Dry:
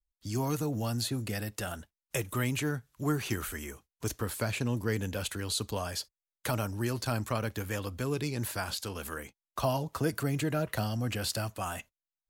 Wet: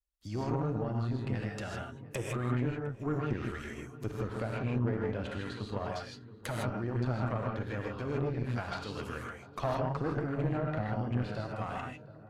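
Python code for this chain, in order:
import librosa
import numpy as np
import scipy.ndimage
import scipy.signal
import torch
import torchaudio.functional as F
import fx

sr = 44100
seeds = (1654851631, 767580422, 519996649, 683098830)

p1 = fx.env_lowpass_down(x, sr, base_hz=1300.0, full_db=-28.5)
p2 = p1 + fx.echo_filtered(p1, sr, ms=707, feedback_pct=57, hz=1400.0, wet_db=-15.5, dry=0)
p3 = fx.rev_gated(p2, sr, seeds[0], gate_ms=180, shape='rising', drr_db=-1.0)
y = fx.tube_stage(p3, sr, drive_db=22.0, bias=0.75)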